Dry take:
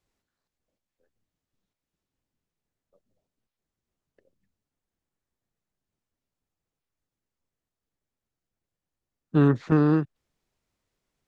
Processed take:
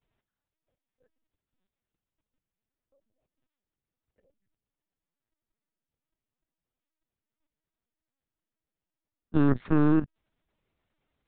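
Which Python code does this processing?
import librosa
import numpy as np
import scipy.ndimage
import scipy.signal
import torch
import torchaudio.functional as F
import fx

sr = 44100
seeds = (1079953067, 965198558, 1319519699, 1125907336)

y = fx.lpc_vocoder(x, sr, seeds[0], excitation='pitch_kept', order=10)
y = fx.level_steps(y, sr, step_db=12)
y = y * librosa.db_to_amplitude(4.0)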